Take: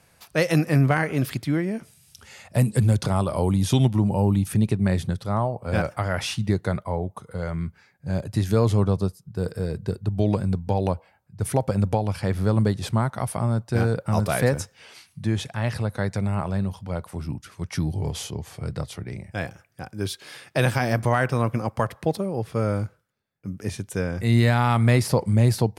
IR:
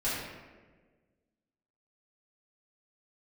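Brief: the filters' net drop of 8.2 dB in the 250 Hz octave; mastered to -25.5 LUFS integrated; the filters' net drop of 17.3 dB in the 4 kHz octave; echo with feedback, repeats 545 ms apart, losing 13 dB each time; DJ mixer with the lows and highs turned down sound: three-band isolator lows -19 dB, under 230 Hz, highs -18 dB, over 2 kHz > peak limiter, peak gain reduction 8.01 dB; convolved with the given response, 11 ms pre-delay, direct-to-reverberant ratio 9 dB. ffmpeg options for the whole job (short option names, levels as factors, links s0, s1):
-filter_complex "[0:a]equalizer=f=250:t=o:g=-4,equalizer=f=4000:t=o:g=-4.5,aecho=1:1:545|1090|1635:0.224|0.0493|0.0108,asplit=2[s0][s1];[1:a]atrim=start_sample=2205,adelay=11[s2];[s1][s2]afir=irnorm=-1:irlink=0,volume=0.141[s3];[s0][s3]amix=inputs=2:normalize=0,acrossover=split=230 2000:gain=0.112 1 0.126[s4][s5][s6];[s4][s5][s6]amix=inputs=3:normalize=0,volume=2.24,alimiter=limit=0.251:level=0:latency=1"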